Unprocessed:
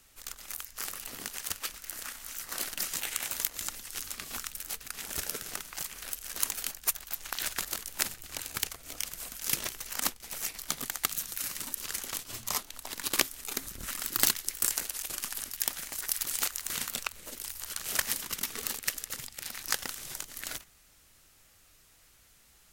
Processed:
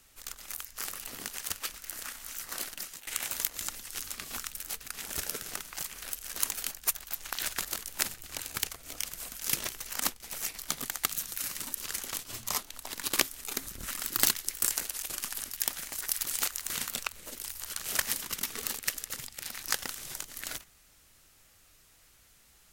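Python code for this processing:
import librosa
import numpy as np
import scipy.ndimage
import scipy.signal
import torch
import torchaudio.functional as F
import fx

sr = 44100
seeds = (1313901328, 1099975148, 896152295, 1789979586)

y = fx.edit(x, sr, fx.fade_out_to(start_s=2.47, length_s=0.6, floor_db=-19.0), tone=tone)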